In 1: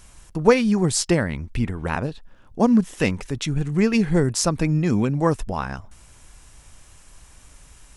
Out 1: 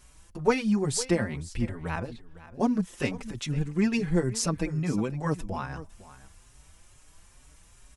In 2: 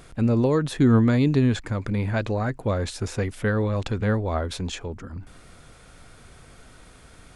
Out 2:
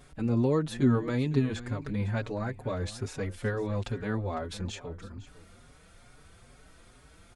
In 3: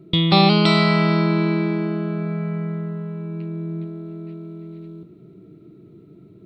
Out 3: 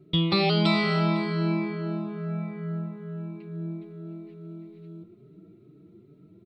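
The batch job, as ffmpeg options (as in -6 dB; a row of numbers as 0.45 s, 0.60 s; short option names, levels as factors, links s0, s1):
-filter_complex "[0:a]aecho=1:1:505:0.141,asplit=2[s0][s1];[s1]adelay=5.1,afreqshift=2.3[s2];[s0][s2]amix=inputs=2:normalize=1,volume=0.631"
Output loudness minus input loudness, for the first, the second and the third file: -7.0 LU, -7.0 LU, -7.5 LU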